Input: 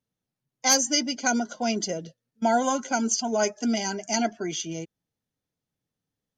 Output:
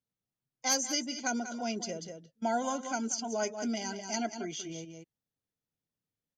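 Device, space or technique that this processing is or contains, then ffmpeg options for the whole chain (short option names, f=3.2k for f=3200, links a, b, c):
ducked delay: -filter_complex "[0:a]asplit=3[a][b][c];[b]adelay=189,volume=-6dB[d];[c]apad=whole_len=289305[e];[d][e]sidechaincompress=threshold=-34dB:ratio=8:attack=36:release=133[f];[a][f]amix=inputs=2:normalize=0,volume=-8.5dB"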